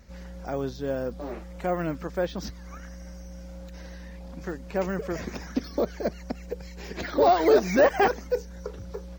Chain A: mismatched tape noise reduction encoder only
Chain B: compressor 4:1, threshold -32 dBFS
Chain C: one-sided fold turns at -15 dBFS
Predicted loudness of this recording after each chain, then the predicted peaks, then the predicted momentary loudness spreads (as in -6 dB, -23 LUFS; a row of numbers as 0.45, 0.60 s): -27.0, -37.5, -27.5 LUFS; -10.0, -19.0, -10.5 dBFS; 20, 10, 22 LU